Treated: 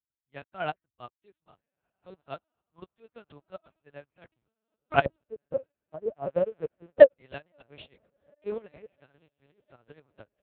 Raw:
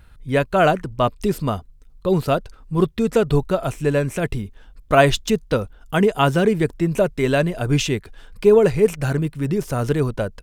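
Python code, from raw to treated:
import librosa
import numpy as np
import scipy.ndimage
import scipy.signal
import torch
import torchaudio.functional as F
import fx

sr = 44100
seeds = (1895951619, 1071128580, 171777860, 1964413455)

y = fx.lowpass_res(x, sr, hz=590.0, q=4.9, at=(5.05, 7.14))
y = fx.quant_dither(y, sr, seeds[0], bits=10, dither='none')
y = fx.peak_eq(y, sr, hz=220.0, db=-12.5, octaves=2.2)
y = fx.echo_diffused(y, sr, ms=1533, feedback_pct=50, wet_db=-14)
y = fx.tremolo_shape(y, sr, shape='saw_up', hz=4.2, depth_pct=60)
y = fx.lpc_vocoder(y, sr, seeds[1], excitation='pitch_kept', order=8)
y = scipy.signal.sosfilt(scipy.signal.butter(2, 65.0, 'highpass', fs=sr, output='sos'), y)
y = fx.upward_expand(y, sr, threshold_db=-41.0, expansion=2.5)
y = y * 10.0 ** (3.5 / 20.0)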